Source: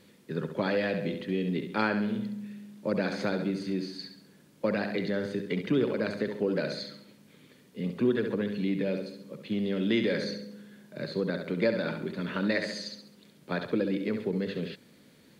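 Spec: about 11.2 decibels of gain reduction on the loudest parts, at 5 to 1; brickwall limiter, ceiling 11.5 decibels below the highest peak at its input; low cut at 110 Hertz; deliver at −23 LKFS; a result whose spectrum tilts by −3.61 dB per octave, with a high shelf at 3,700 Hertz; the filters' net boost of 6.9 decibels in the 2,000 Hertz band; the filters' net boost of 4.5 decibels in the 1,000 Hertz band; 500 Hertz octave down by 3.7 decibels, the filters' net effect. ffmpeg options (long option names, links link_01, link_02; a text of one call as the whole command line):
ffmpeg -i in.wav -af "highpass=110,equalizer=frequency=500:width_type=o:gain=-6,equalizer=frequency=1000:width_type=o:gain=5,equalizer=frequency=2000:width_type=o:gain=5.5,highshelf=frequency=3700:gain=7.5,acompressor=threshold=-31dB:ratio=5,volume=16dB,alimiter=limit=-13dB:level=0:latency=1" out.wav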